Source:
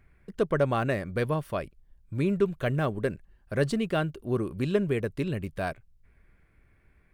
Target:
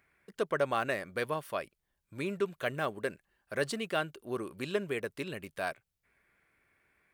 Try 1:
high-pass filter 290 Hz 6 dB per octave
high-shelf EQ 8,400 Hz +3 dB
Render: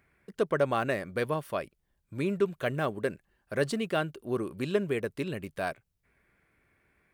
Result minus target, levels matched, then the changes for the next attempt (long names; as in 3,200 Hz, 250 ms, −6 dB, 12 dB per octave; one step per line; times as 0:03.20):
250 Hz band +3.0 dB
change: high-pass filter 770 Hz 6 dB per octave